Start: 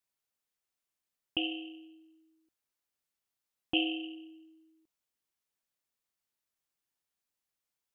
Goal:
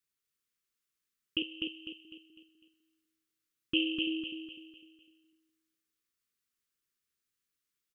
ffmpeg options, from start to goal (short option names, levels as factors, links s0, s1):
-filter_complex "[0:a]asettb=1/sr,asplit=3[s0][s1][s2];[s0]atrim=end=1.424[s3];[s1]atrim=start=1.42:end=2.05,asetpts=PTS-STARTPTS,afade=t=in:d=0.004:c=qsin,afade=t=out:st=0.626:d=0.004:c=qsin,acrossover=split=580|2200[s4][s5][s6];[s4]acompressor=threshold=0.00224:ratio=4[s7];[s5]acompressor=threshold=0.002:ratio=4[s8];[s6]acompressor=threshold=0.00447:ratio=4[s9];[s7][s8][s9]amix=inputs=3:normalize=0[s10];[s2]atrim=start=2.046[s11];[s3][s10]acrossfade=d=0.004:c1=hsin:c2=qsin[s12];[s12][s11]acrossfade=d=0.004:c1=qsin:c2=hsin,asettb=1/sr,asplit=3[s13][s14][s15];[s13]atrim=end=4.074[s16];[s14]atrim=start=4.07:end=4.49,asetpts=PTS-STARTPTS,afade=t=in:d=0.004:c=qsin,afade=t=out:st=0.416:d=0.004:c=qsin,lowshelf=f=390:g=12[s17];[s15]atrim=start=4.486[s18];[s16][s17]acrossfade=d=0.004:c1=hsin:c2=qsin[s19];[s19][s18]acrossfade=d=0.004:c1=qsin:c2=hsin,asuperstop=centerf=730:order=8:qfactor=1.2,aecho=1:1:251|502|753|1004|1255:0.631|0.252|0.101|0.0404|0.0162"